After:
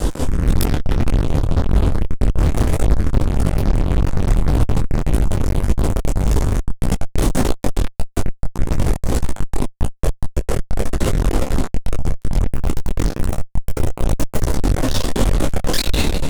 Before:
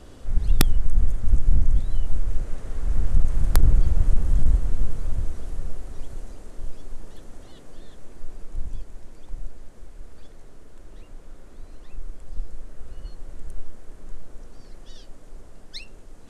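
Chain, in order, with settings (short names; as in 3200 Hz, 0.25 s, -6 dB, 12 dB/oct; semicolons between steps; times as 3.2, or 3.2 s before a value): 12.43–14.53 G.711 law mismatch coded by mu; reverb RT60 3.0 s, pre-delay 41 ms, DRR 1 dB; AGC gain up to 12 dB; limiter -11.5 dBFS, peak gain reduction 10.5 dB; soft clip -19.5 dBFS, distortion -11 dB; bell 2000 Hz -10.5 dB 2.5 oct; resonator 260 Hz, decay 0.18 s, harmonics all, mix 70%; fuzz box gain 51 dB, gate -57 dBFS; detuned doubles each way 60 cents; gain +6 dB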